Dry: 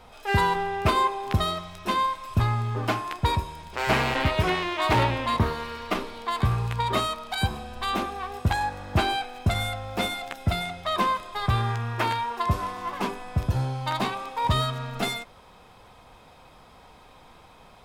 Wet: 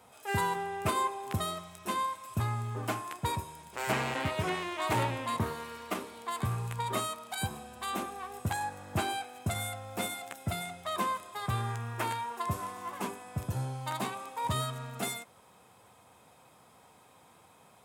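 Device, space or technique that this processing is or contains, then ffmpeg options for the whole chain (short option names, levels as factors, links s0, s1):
budget condenser microphone: -filter_complex "[0:a]asettb=1/sr,asplit=3[s0][s1][s2];[s0]atrim=end=3.924[s3];[s1]atrim=start=3.92:end=4.87,asetpts=PTS-STARTPTS,afade=t=in:d=0.004:c=qsin,afade=t=out:st=0.946:d=0.004:c=qsin,acrossover=split=7500[s4][s5];[s5]acompressor=threshold=0.00224:ratio=4:attack=1:release=60[s6];[s4][s6]amix=inputs=2:normalize=0[s7];[s2]atrim=start=4.866[s8];[s3][s7]acrossfade=d=0.004:c1=hsin:c2=qsin[s9];[s9][s8]acrossfade=d=0.004:c1=qsin:c2=hsin,highpass=f=91:w=0.5412,highpass=f=91:w=1.3066,highshelf=f=6200:t=q:w=1.5:g=8.5,volume=0.422"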